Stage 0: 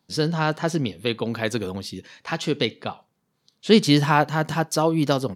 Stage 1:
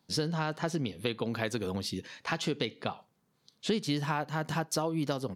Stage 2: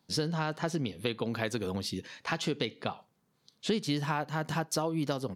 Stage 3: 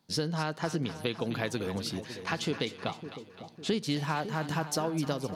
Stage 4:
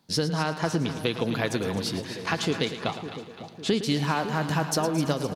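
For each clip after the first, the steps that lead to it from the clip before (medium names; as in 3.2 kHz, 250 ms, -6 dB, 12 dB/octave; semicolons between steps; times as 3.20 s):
compression 6:1, threshold -27 dBFS, peak gain reduction 16 dB; trim -1 dB
no audible change
two-band feedback delay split 820 Hz, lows 555 ms, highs 257 ms, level -11 dB
feedback delay 111 ms, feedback 56%, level -12 dB; trim +5 dB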